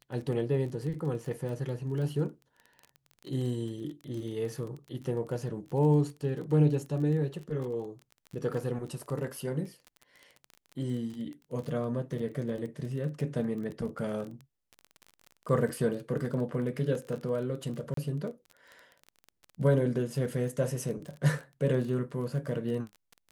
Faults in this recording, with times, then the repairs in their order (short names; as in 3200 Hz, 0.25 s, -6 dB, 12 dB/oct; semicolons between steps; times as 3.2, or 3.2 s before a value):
crackle 25/s -37 dBFS
17.94–17.97 gap 33 ms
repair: de-click; interpolate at 17.94, 33 ms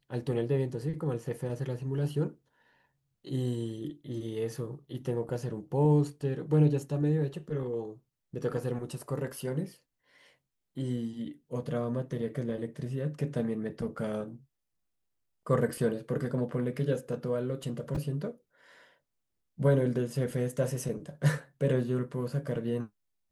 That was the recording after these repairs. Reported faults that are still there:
none